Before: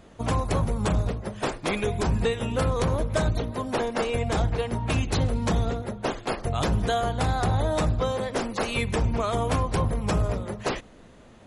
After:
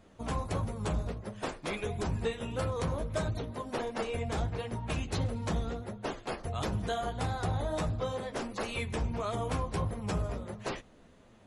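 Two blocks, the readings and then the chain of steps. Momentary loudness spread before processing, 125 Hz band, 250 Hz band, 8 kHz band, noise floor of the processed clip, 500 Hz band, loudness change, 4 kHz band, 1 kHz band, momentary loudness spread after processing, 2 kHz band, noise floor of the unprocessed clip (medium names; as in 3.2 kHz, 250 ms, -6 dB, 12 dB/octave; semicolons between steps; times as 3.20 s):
5 LU, -8.0 dB, -8.5 dB, -8.5 dB, -58 dBFS, -8.0 dB, -8.5 dB, -8.0 dB, -8.5 dB, 5 LU, -8.0 dB, -50 dBFS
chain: flange 1.5 Hz, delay 8.9 ms, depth 5.3 ms, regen -31%; trim -4.5 dB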